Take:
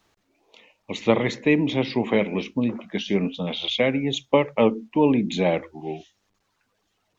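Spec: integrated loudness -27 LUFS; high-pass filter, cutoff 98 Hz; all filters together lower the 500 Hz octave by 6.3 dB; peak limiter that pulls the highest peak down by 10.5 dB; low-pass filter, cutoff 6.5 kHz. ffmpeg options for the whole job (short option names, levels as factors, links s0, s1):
-af "highpass=98,lowpass=6500,equalizer=f=500:t=o:g=-7.5,volume=1.33,alimiter=limit=0.15:level=0:latency=1"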